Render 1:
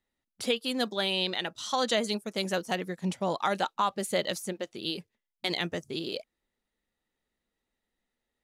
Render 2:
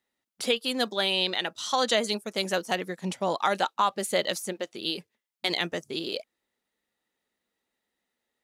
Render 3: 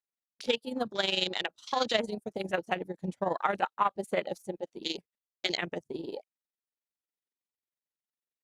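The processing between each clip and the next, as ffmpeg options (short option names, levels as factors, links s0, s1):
-af "highpass=f=280:p=1,volume=1.5"
-af "afwtdn=0.0282,tremolo=f=22:d=0.71" -ar 48000 -c:a libopus -b:a 64k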